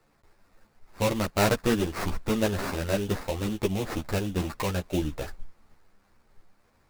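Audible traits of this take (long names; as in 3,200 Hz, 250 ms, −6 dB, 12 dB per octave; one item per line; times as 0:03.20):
aliases and images of a low sample rate 3,200 Hz, jitter 20%
a shimmering, thickened sound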